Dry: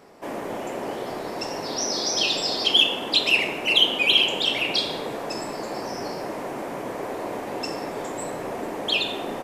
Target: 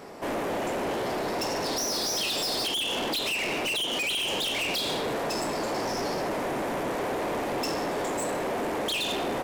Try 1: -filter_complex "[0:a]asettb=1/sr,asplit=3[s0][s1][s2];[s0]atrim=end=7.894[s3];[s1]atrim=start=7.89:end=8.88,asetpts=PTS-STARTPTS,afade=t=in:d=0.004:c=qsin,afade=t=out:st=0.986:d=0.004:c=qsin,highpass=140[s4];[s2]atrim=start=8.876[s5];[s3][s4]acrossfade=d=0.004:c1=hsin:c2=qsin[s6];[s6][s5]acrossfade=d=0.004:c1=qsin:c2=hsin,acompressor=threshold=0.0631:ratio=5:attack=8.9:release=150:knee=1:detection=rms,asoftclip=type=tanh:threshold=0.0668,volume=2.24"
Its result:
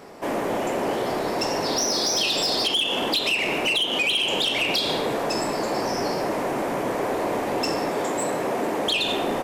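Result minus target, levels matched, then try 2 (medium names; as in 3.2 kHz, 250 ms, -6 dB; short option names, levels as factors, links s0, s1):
saturation: distortion -9 dB
-filter_complex "[0:a]asettb=1/sr,asplit=3[s0][s1][s2];[s0]atrim=end=7.894[s3];[s1]atrim=start=7.89:end=8.88,asetpts=PTS-STARTPTS,afade=t=in:d=0.004:c=qsin,afade=t=out:st=0.986:d=0.004:c=qsin,highpass=140[s4];[s2]atrim=start=8.876[s5];[s3][s4]acrossfade=d=0.004:c1=hsin:c2=qsin[s6];[s6][s5]acrossfade=d=0.004:c1=qsin:c2=hsin,acompressor=threshold=0.0631:ratio=5:attack=8.9:release=150:knee=1:detection=rms,asoftclip=type=tanh:threshold=0.0211,volume=2.24"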